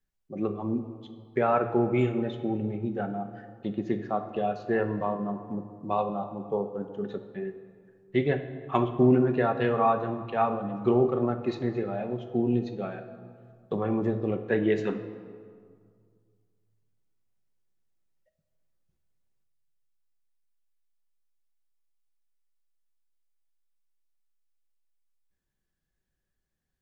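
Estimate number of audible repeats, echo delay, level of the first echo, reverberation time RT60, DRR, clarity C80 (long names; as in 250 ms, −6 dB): no echo audible, no echo audible, no echo audible, 2.0 s, 6.5 dB, 11.5 dB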